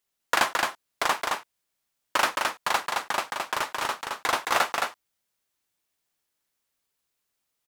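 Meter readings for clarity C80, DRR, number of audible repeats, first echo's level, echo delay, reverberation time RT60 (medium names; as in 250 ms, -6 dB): no reverb, no reverb, 1, -3.5 dB, 218 ms, no reverb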